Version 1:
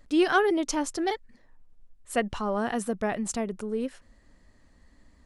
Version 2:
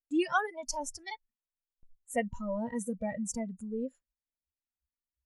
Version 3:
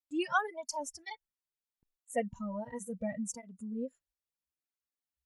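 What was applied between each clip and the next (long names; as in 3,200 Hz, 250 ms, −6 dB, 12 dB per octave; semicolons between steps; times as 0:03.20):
noise reduction from a noise print of the clip's start 24 dB; noise gate with hold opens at −51 dBFS; level −4 dB
through-zero flanger with one copy inverted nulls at 0.73 Hz, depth 4.9 ms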